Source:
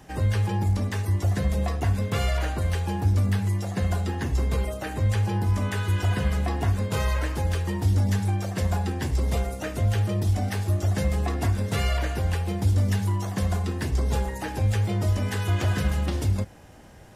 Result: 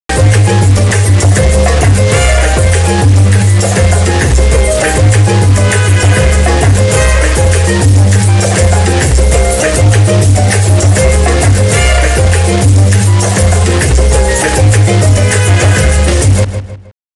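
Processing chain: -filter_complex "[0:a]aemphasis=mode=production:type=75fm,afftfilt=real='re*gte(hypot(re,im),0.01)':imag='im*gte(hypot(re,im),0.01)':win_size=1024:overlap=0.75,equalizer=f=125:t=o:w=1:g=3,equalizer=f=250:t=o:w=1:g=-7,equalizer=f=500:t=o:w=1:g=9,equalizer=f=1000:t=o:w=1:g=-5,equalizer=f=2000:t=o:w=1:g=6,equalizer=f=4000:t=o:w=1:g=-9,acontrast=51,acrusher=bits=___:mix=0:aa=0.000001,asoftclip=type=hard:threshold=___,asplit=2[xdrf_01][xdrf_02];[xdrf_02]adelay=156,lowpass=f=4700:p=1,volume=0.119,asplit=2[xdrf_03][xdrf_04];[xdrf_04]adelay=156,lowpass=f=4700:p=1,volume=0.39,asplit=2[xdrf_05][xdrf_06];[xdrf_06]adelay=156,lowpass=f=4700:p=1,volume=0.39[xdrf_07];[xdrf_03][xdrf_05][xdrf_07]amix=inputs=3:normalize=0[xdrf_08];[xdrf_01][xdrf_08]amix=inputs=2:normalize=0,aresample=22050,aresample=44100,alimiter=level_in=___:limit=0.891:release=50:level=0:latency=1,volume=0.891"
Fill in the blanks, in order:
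4, 0.188, 13.3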